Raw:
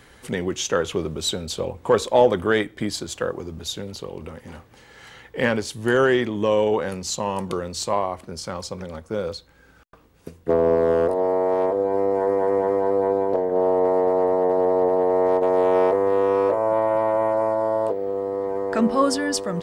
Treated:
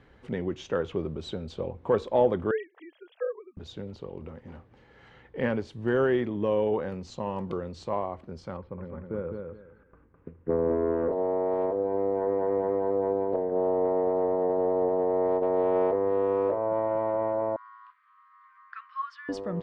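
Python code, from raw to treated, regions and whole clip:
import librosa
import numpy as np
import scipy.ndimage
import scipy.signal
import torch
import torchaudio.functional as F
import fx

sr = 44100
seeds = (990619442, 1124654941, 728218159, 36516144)

y = fx.chain(x, sr, fx.sine_speech(),
    fx.highpass(hz=460.0, slope=24), at=(2.51, 3.57))
y = fx.chain(y, sr, fx.lowpass(hz=2200.0, slope=24),
    fx.peak_eq(hz=700.0, db=-8.0, octaves=0.41),
    fx.echo_feedback(ms=208, feedback_pct=23, wet_db=-5), at=(8.57, 11.12))
y = fx.chain(y, sr, fx.brickwall_highpass(low_hz=1000.0),
    fx.air_absorb(metres=190.0), at=(17.56, 19.29))
y = scipy.signal.sosfilt(scipy.signal.butter(2, 3200.0, 'lowpass', fs=sr, output='sos'), y)
y = fx.tilt_shelf(y, sr, db=4.0, hz=850.0)
y = F.gain(torch.from_numpy(y), -8.0).numpy()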